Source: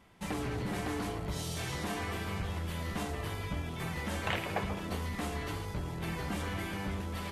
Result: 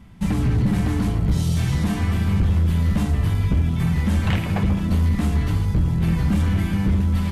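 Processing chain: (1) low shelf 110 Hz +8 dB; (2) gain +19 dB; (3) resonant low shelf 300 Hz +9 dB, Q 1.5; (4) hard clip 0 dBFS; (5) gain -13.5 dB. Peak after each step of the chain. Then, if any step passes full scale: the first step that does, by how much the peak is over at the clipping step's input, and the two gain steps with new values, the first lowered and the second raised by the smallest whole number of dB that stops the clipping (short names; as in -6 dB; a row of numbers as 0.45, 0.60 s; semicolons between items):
-18.5, +0.5, +7.0, 0.0, -13.5 dBFS; step 2, 7.0 dB; step 2 +12 dB, step 5 -6.5 dB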